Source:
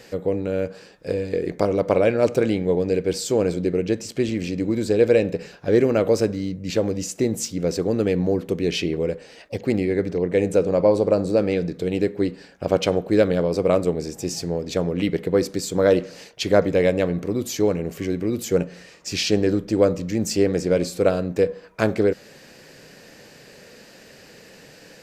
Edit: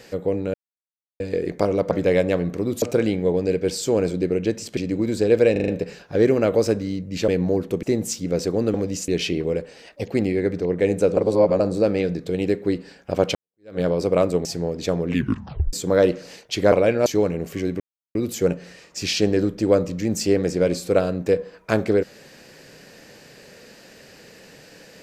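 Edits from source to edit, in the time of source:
0.54–1.2 mute
1.91–2.25 swap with 16.6–17.51
4.2–4.46 cut
5.21 stutter 0.04 s, 5 plays
6.81–7.15 swap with 8.06–8.61
10.7–11.13 reverse
12.88–13.33 fade in exponential
13.98–14.33 cut
14.96 tape stop 0.65 s
18.25 insert silence 0.35 s

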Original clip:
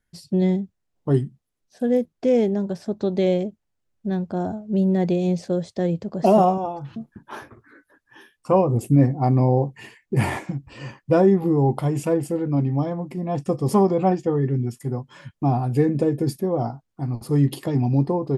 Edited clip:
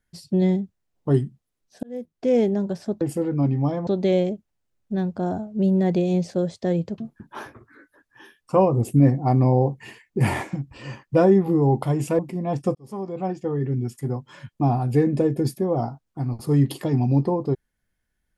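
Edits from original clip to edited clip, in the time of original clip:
1.83–2.39 fade in
6.12–6.94 cut
12.15–13.01 move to 3.01
13.57–14.8 fade in

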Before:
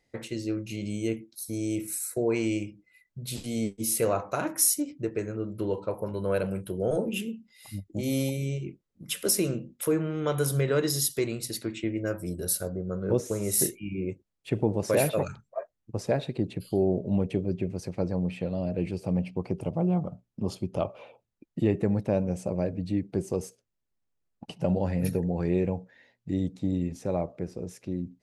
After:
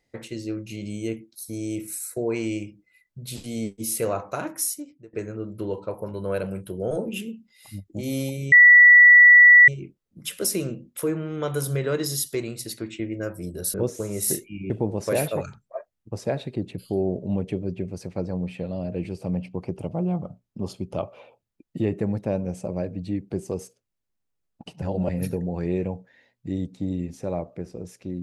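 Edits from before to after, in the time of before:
4.36–5.13 fade out, to -24 dB
8.52 add tone 1950 Hz -7.5 dBFS 1.16 s
12.58–13.05 cut
14.01–14.52 cut
24.64–24.91 reverse

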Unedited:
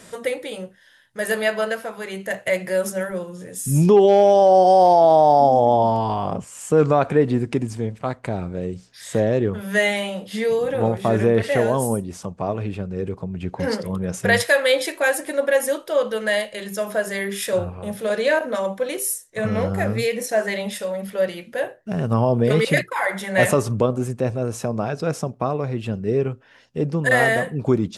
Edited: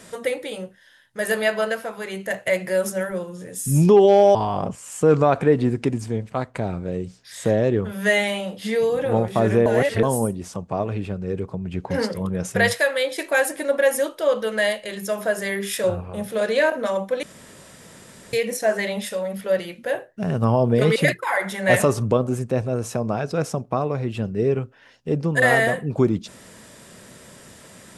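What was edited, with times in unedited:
4.35–6.04 cut
11.35–11.72 reverse
14.16–14.87 fade out, to -7.5 dB
18.92–20.02 room tone

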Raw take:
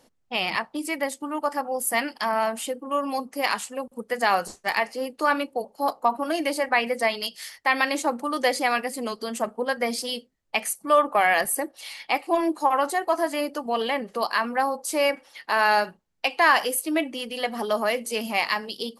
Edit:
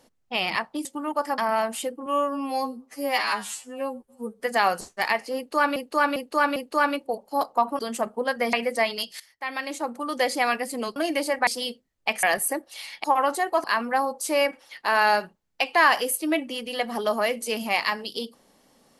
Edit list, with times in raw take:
0.85–1.12 cut
1.65–2.22 cut
2.9–4.07 stretch 2×
5.03–5.43 loop, 4 plays
6.26–6.77 swap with 9.2–9.94
7.44–8.69 fade in, from -17.5 dB
10.7–11.3 cut
12.11–12.59 cut
13.19–14.28 cut

